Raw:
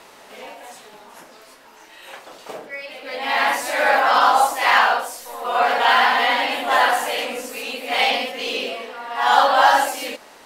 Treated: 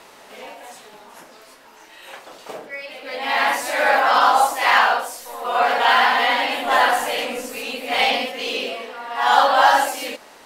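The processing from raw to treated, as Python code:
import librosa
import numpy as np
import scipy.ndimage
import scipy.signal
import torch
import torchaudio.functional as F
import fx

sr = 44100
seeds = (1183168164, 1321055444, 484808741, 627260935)

y = fx.low_shelf(x, sr, hz=160.0, db=8.5, at=(6.65, 8.28))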